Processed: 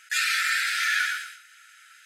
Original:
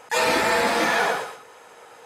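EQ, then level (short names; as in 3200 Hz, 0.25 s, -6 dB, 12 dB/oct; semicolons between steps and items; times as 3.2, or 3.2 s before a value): brick-wall FIR high-pass 1300 Hz; 0.0 dB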